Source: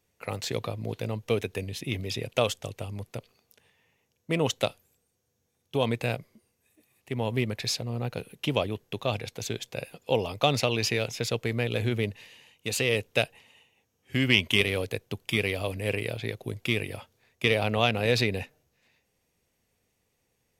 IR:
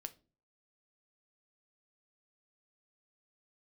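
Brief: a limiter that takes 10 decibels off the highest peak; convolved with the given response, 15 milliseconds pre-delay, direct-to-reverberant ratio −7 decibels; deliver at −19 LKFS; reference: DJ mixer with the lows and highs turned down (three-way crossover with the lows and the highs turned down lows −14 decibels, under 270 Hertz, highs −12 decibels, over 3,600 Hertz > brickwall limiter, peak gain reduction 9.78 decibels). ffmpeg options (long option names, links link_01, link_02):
-filter_complex "[0:a]alimiter=limit=-14.5dB:level=0:latency=1,asplit=2[link_01][link_02];[1:a]atrim=start_sample=2205,adelay=15[link_03];[link_02][link_03]afir=irnorm=-1:irlink=0,volume=11dB[link_04];[link_01][link_04]amix=inputs=2:normalize=0,acrossover=split=270 3600:gain=0.2 1 0.251[link_05][link_06][link_07];[link_05][link_06][link_07]amix=inputs=3:normalize=0,volume=10dB,alimiter=limit=-7dB:level=0:latency=1"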